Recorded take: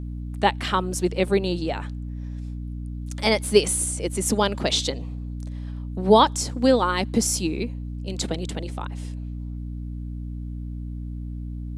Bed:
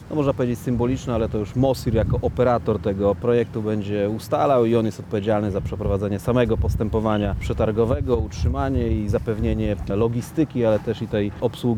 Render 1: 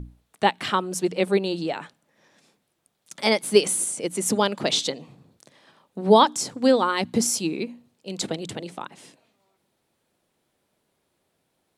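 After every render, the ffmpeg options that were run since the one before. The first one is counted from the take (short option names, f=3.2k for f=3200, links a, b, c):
-af "bandreject=f=60:t=h:w=6,bandreject=f=120:t=h:w=6,bandreject=f=180:t=h:w=6,bandreject=f=240:t=h:w=6,bandreject=f=300:t=h:w=6"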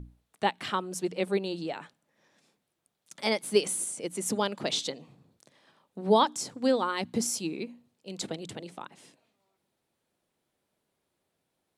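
-af "volume=-7dB"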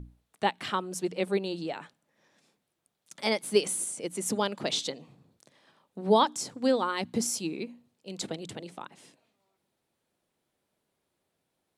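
-af anull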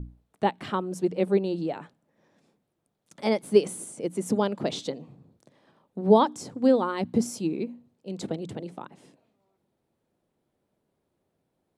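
-af "tiltshelf=f=1.1k:g=7"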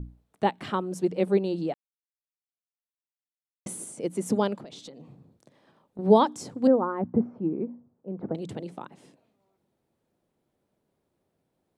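-filter_complex "[0:a]asettb=1/sr,asplit=3[a][b][c];[a]atrim=end=4.564[d];[b]atrim=start=4.56:end=5.99,asetpts=PTS-STARTPTS,afade=t=in:d=0.004:c=qsin,afade=t=out:st=1.426:d=0.004:c=qsin,acompressor=threshold=-41dB:ratio=6:attack=3.2:release=140:knee=1:detection=peak[e];[c]atrim=start=5.986[f];[d][e]acrossfade=d=0.004:c1=hsin:c2=qsin[g];[g][f]acrossfade=d=0.004:c1=qsin:c2=hsin,asettb=1/sr,asplit=3[h][i][j];[h]atrim=end=6.674[k];[i]atrim=start=6.67:end=8.35,asetpts=PTS-STARTPTS,afade=t=in:d=0.004:c=qsin,afade=t=out:st=1.676:d=0.004:c=qsin,lowpass=f=1.4k:w=0.5412,lowpass=f=1.4k:w=1.3066[l];[j]atrim=start=8.346[m];[k][l]acrossfade=d=0.004:c1=hsin:c2=qsin[n];[n][m]acrossfade=d=0.004:c1=qsin:c2=hsin,asplit=3[o][p][q];[o]atrim=end=1.74,asetpts=PTS-STARTPTS,afade=t=out:st=1.736:d=0.004:c=hsin[r];[p]atrim=start=1.74:end=3.66,asetpts=PTS-STARTPTS,volume=0[s];[q]atrim=start=3.66,asetpts=PTS-STARTPTS,afade=t=in:d=0.004:c=hsin[t];[r][s][t]concat=n=3:v=0:a=1"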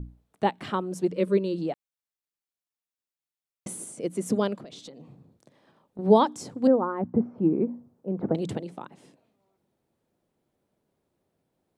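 -filter_complex "[0:a]asettb=1/sr,asplit=3[a][b][c];[a]atrim=end=1.124[d];[b]atrim=start=1.12:end=1.58,asetpts=PTS-STARTPTS,afade=t=in:d=0.004:c=qsin,afade=t=out:st=0.456:d=0.004:c=qsin,asuperstop=centerf=780:order=8:qfactor=2.7[e];[c]atrim=start=1.576[f];[d][e]acrossfade=d=0.004:c1=hsin:c2=qsin[g];[g][f]acrossfade=d=0.004:c1=qsin:c2=hsin,asettb=1/sr,asplit=3[h][i][j];[h]atrim=end=3.954[k];[i]atrim=start=3.95:end=4.79,asetpts=PTS-STARTPTS,afade=t=in:d=0.004:c=qsin,afade=t=out:st=0.836:d=0.004:c=qsin,bandreject=f=870:w=6.5[l];[j]atrim=start=4.786[m];[k][l]acrossfade=d=0.004:c1=hsin:c2=qsin[n];[n][m]acrossfade=d=0.004:c1=qsin:c2=hsin,asplit=3[o][p][q];[o]atrim=end=7.382[r];[p]atrim=start=7.378:end=8.582,asetpts=PTS-STARTPTS,volume=5.5dB[s];[q]atrim=start=8.578[t];[r][s]acrossfade=d=0.004:c1=hsin:c2=hsin[u];[u][t]acrossfade=d=0.004:c1=hsin:c2=hsin"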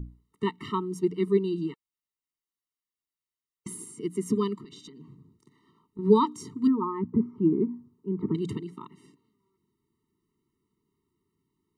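-af "afftfilt=real='re*eq(mod(floor(b*sr/1024/450),2),0)':imag='im*eq(mod(floor(b*sr/1024/450),2),0)':win_size=1024:overlap=0.75"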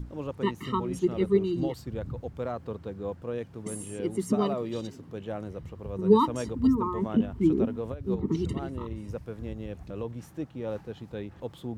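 -filter_complex "[1:a]volume=-15dB[a];[0:a][a]amix=inputs=2:normalize=0"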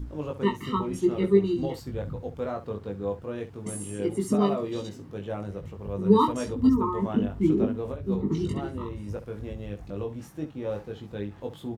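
-af "aecho=1:1:20|68:0.708|0.224"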